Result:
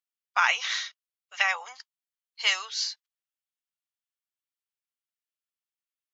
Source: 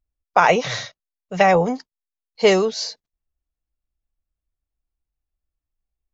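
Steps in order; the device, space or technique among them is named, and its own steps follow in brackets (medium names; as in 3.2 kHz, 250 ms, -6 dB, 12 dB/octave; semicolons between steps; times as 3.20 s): headphones lying on a table (high-pass 1.2 kHz 24 dB/octave; peaking EQ 3.1 kHz +5 dB 0.34 oct); trim -2.5 dB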